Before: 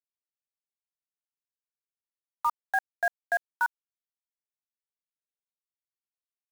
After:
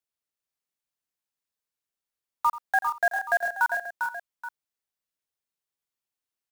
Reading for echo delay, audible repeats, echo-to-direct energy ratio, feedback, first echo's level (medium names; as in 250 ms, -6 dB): 85 ms, 4, -3.0 dB, no regular repeats, -16.0 dB